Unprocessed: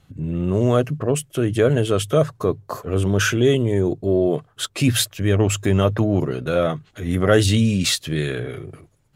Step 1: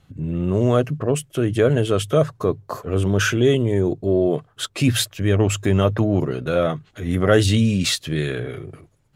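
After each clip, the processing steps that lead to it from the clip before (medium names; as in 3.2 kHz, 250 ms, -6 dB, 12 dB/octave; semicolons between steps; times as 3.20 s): treble shelf 7.2 kHz -4 dB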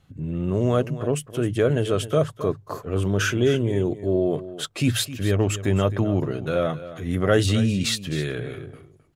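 delay 263 ms -14.5 dB; trim -3.5 dB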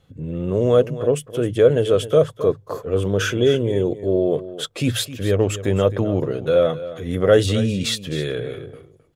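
small resonant body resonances 490/3400 Hz, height 11 dB, ringing for 30 ms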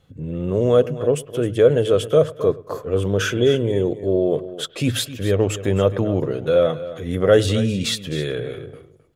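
bucket-brigade echo 103 ms, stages 2048, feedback 32%, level -21 dB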